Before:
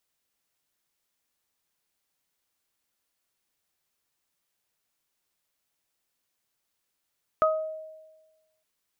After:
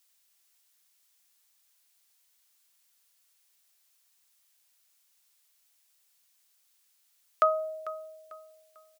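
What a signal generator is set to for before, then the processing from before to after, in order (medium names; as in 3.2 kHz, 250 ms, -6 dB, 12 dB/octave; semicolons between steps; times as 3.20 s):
additive tone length 1.21 s, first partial 630 Hz, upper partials 2 dB, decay 1.25 s, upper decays 0.34 s, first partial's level -19.5 dB
high-pass 570 Hz 12 dB/octave; treble shelf 2.3 kHz +11.5 dB; feedback delay 446 ms, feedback 33%, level -16 dB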